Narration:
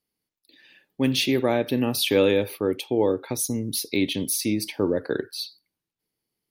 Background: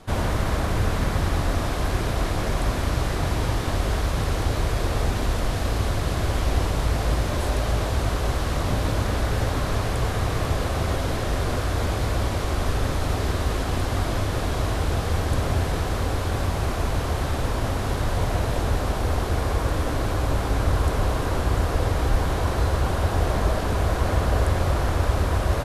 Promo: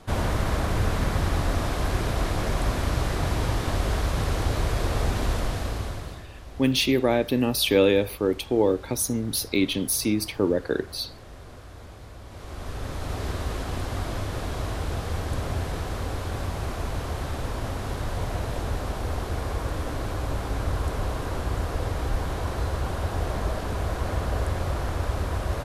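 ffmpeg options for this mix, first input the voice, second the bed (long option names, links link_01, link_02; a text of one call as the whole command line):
ffmpeg -i stem1.wav -i stem2.wav -filter_complex "[0:a]adelay=5600,volume=0.5dB[link_01];[1:a]volume=12.5dB,afade=type=out:start_time=5.32:duration=0.94:silence=0.125893,afade=type=in:start_time=12.25:duration=1.02:silence=0.199526[link_02];[link_01][link_02]amix=inputs=2:normalize=0" out.wav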